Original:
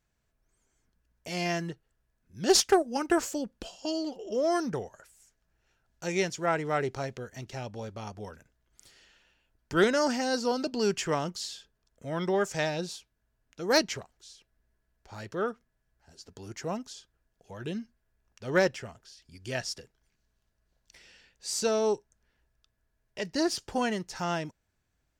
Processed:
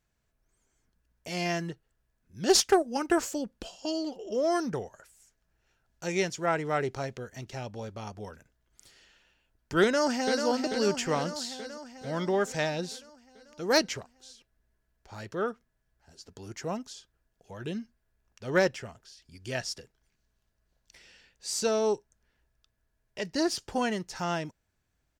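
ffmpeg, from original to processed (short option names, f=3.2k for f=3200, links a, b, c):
-filter_complex "[0:a]asplit=2[a][b];[b]afade=t=in:st=9.83:d=0.01,afade=t=out:st=10.45:d=0.01,aecho=0:1:440|880|1320|1760|2200|2640|3080|3520|3960:0.473151|0.307548|0.199906|0.129939|0.0844605|0.0548993|0.0356845|0.023195|0.0150767[c];[a][c]amix=inputs=2:normalize=0"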